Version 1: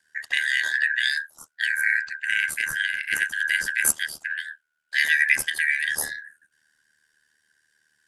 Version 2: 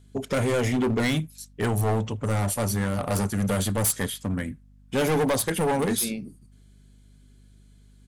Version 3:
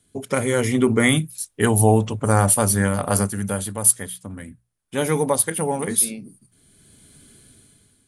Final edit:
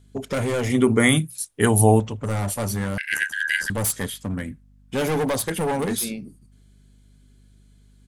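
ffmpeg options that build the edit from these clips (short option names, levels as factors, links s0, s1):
-filter_complex "[1:a]asplit=3[s0][s1][s2];[s0]atrim=end=0.702[s3];[2:a]atrim=start=0.698:end=2.002[s4];[s1]atrim=start=1.998:end=2.982[s5];[0:a]atrim=start=2.978:end=3.702[s6];[s2]atrim=start=3.698[s7];[s3][s4]acrossfade=d=0.004:c1=hsin:c2=hsin[s8];[s8][s5]acrossfade=d=0.004:c1=hsin:c2=hsin[s9];[s9][s6]acrossfade=d=0.004:c1=hsin:c2=hsin[s10];[s10][s7]acrossfade=d=0.004:c1=hsin:c2=hsin"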